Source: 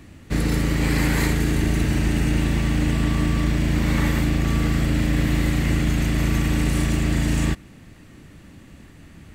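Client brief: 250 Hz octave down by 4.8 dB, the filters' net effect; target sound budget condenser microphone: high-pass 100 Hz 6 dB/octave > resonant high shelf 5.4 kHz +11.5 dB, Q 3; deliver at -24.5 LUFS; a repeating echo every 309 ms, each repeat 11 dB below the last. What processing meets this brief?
high-pass 100 Hz 6 dB/octave; peaking EQ 250 Hz -5.5 dB; resonant high shelf 5.4 kHz +11.5 dB, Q 3; feedback delay 309 ms, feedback 28%, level -11 dB; trim -4 dB

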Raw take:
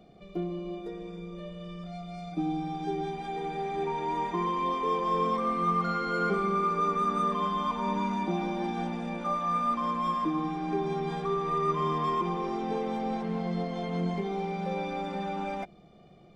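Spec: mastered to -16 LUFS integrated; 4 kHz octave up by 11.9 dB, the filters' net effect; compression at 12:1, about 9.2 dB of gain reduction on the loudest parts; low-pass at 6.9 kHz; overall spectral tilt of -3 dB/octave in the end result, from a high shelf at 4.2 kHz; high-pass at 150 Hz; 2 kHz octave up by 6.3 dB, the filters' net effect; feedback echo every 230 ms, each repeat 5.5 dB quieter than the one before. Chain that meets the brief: high-pass 150 Hz; low-pass 6.9 kHz; peaking EQ 2 kHz +4 dB; peaking EQ 4 kHz +9 dB; treble shelf 4.2 kHz +9 dB; compression 12:1, threshold -31 dBFS; feedback delay 230 ms, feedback 53%, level -5.5 dB; trim +17.5 dB

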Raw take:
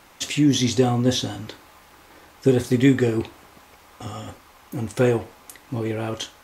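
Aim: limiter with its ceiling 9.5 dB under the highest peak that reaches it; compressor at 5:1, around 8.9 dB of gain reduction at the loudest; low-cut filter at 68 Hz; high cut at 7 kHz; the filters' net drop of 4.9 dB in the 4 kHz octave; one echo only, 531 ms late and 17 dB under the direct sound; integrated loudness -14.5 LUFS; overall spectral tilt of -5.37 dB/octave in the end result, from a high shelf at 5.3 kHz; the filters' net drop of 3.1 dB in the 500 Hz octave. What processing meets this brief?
high-pass 68 Hz; low-pass 7 kHz; peaking EQ 500 Hz -4 dB; peaking EQ 4 kHz -4 dB; treble shelf 5.3 kHz -4.5 dB; compression 5:1, threshold -23 dBFS; peak limiter -22 dBFS; delay 531 ms -17 dB; trim +18.5 dB

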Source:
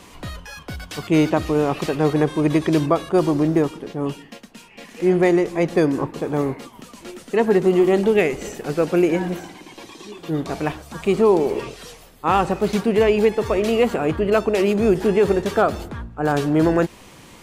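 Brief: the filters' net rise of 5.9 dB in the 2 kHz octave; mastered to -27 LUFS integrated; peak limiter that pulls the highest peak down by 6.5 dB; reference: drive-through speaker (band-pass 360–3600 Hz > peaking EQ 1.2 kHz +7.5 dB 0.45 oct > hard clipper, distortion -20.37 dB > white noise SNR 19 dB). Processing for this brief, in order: peaking EQ 2 kHz +6.5 dB; peak limiter -9.5 dBFS; band-pass 360–3600 Hz; peaking EQ 1.2 kHz +7.5 dB 0.45 oct; hard clipper -11.5 dBFS; white noise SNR 19 dB; trim -4 dB

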